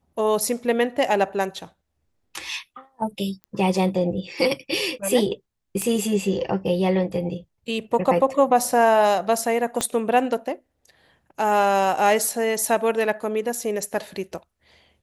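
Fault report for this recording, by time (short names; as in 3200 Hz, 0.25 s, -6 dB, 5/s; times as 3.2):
3.44 pop -26 dBFS
5.82 pop -13 dBFS
9.81 pop -8 dBFS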